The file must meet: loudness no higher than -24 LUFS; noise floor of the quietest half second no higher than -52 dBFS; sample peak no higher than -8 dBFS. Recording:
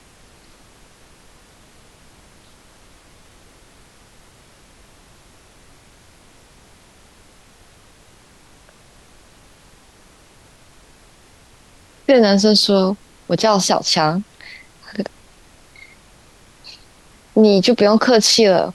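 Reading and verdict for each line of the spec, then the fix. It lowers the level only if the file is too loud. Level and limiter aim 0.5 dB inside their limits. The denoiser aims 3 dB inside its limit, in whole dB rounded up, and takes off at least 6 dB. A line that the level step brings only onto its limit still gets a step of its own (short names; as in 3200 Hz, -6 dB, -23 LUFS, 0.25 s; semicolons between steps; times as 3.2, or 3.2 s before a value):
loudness -15.0 LUFS: fail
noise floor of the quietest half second -49 dBFS: fail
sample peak -3.0 dBFS: fail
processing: gain -9.5 dB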